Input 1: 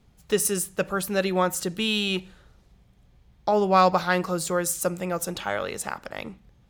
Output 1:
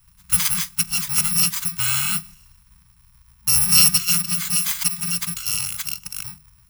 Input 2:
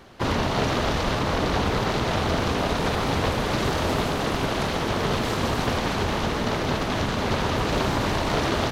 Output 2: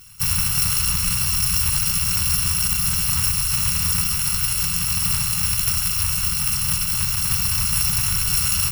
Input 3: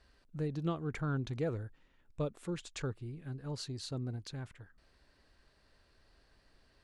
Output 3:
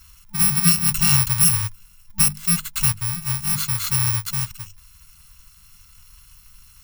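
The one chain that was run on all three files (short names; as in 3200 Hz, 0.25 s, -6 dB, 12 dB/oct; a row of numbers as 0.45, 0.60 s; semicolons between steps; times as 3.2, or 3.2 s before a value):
FFT order left unsorted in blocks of 128 samples; notches 50/100/150/200 Hz; FFT band-reject 200–880 Hz; match loudness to -18 LUFS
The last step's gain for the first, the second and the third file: +4.0, +3.5, +18.5 dB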